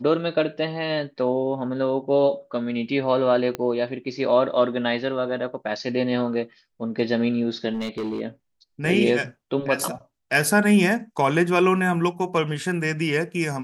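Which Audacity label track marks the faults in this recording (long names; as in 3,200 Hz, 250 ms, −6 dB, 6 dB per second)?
3.550000	3.550000	click −13 dBFS
7.730000	8.200000	clipping −24 dBFS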